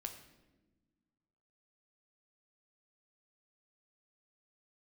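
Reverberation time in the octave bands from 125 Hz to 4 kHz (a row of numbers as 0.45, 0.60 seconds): 2.1, 2.0, 1.5, 0.95, 0.90, 0.80 seconds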